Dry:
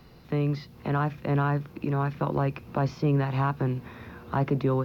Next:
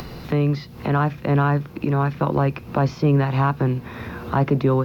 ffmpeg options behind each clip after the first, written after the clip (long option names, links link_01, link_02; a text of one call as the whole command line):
ffmpeg -i in.wav -af "acompressor=mode=upward:threshold=-31dB:ratio=2.5,volume=6.5dB" out.wav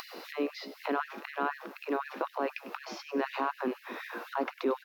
ffmpeg -i in.wav -filter_complex "[0:a]alimiter=limit=-14.5dB:level=0:latency=1:release=95,asplit=6[link_01][link_02][link_03][link_04][link_05][link_06];[link_02]adelay=99,afreqshift=64,volume=-15.5dB[link_07];[link_03]adelay=198,afreqshift=128,volume=-21.5dB[link_08];[link_04]adelay=297,afreqshift=192,volume=-27.5dB[link_09];[link_05]adelay=396,afreqshift=256,volume=-33.6dB[link_10];[link_06]adelay=495,afreqshift=320,volume=-39.6dB[link_11];[link_01][link_07][link_08][link_09][link_10][link_11]amix=inputs=6:normalize=0,afftfilt=real='re*gte(b*sr/1024,210*pow(1700/210,0.5+0.5*sin(2*PI*4*pts/sr)))':imag='im*gte(b*sr/1024,210*pow(1700/210,0.5+0.5*sin(2*PI*4*pts/sr)))':win_size=1024:overlap=0.75,volume=-3.5dB" out.wav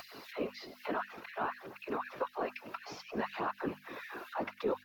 ffmpeg -i in.wav -af "afftfilt=real='hypot(re,im)*cos(2*PI*random(0))':imag='hypot(re,im)*sin(2*PI*random(1))':win_size=512:overlap=0.75,aphaser=in_gain=1:out_gain=1:delay=3.5:decay=0.3:speed=0.57:type=triangular,bandreject=frequency=50:width_type=h:width=6,bandreject=frequency=100:width_type=h:width=6,bandreject=frequency=150:width_type=h:width=6,bandreject=frequency=200:width_type=h:width=6,bandreject=frequency=250:width_type=h:width=6,volume=1.5dB" out.wav